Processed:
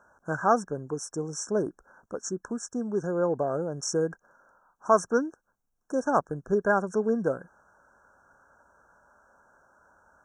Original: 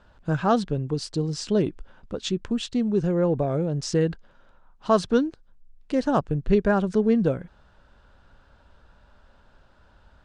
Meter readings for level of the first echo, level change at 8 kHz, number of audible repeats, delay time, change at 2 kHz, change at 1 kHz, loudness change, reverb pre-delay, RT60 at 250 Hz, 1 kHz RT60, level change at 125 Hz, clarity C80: no echo audible, +3.5 dB, no echo audible, no echo audible, +1.5 dB, +1.0 dB, −4.0 dB, no reverb audible, no reverb audible, no reverb audible, −11.0 dB, no reverb audible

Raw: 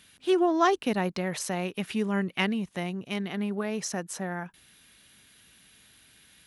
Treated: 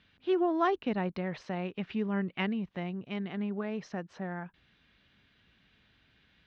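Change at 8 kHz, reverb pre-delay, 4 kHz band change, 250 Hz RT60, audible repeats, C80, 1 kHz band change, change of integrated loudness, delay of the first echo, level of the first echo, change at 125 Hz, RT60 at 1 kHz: below −25 dB, no reverb audible, −9.5 dB, no reverb audible, no echo audible, no reverb audible, −5.0 dB, −4.5 dB, no echo audible, no echo audible, −3.0 dB, no reverb audible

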